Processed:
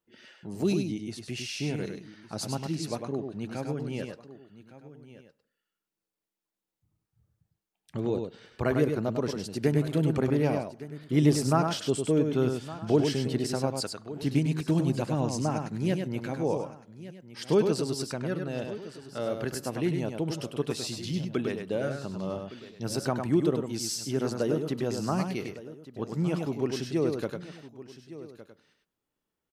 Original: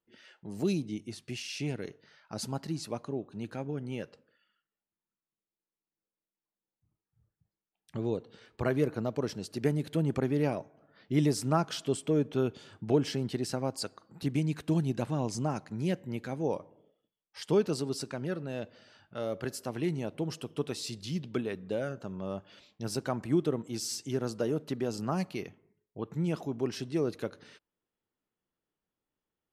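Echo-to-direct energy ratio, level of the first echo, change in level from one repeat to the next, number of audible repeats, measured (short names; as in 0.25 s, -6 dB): -5.0 dB, -5.5 dB, no steady repeat, 3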